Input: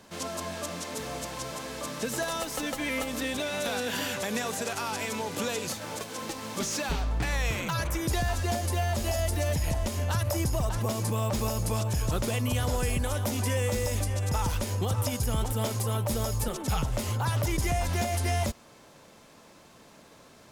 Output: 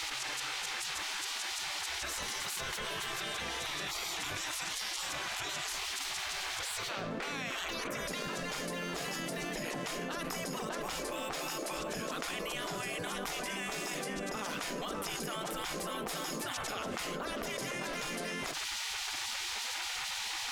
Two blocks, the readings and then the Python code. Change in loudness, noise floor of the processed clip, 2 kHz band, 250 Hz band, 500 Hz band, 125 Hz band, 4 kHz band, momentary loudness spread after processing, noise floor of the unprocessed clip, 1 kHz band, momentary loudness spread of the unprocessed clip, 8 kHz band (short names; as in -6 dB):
-6.0 dB, -39 dBFS, -1.5 dB, -9.0 dB, -8.0 dB, -20.5 dB, +1.0 dB, 2 LU, -54 dBFS, -5.0 dB, 7 LU, -3.5 dB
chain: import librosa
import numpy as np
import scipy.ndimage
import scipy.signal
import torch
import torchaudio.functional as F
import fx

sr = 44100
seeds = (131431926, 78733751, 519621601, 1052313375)

p1 = fx.lowpass(x, sr, hz=1700.0, slope=6)
p2 = fx.peak_eq(p1, sr, hz=880.0, db=-12.0, octaves=0.48)
p3 = 10.0 ** (-36.5 / 20.0) * np.tanh(p2 / 10.0 ** (-36.5 / 20.0))
p4 = p2 + (p3 * librosa.db_to_amplitude(-10.5))
p5 = fx.spec_gate(p4, sr, threshold_db=-20, keep='weak')
y = fx.env_flatten(p5, sr, amount_pct=100)